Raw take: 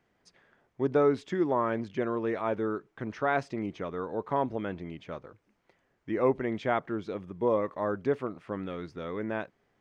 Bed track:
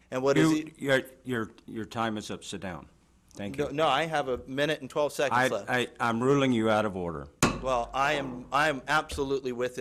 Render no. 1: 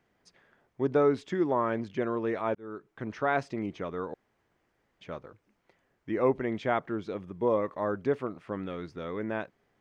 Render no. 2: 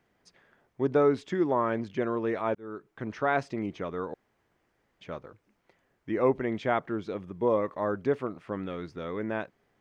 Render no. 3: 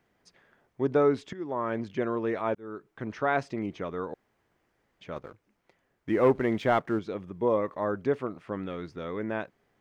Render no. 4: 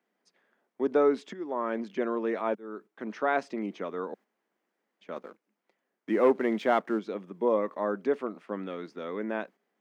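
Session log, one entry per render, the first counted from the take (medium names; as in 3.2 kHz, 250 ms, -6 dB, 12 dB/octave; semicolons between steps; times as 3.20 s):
2.55–3.20 s: fade in equal-power; 4.14–5.01 s: room tone
trim +1 dB
1.33–1.82 s: fade in, from -16 dB; 5.16–6.99 s: waveshaping leveller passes 1
gate -49 dBFS, range -7 dB; Chebyshev high-pass 200 Hz, order 4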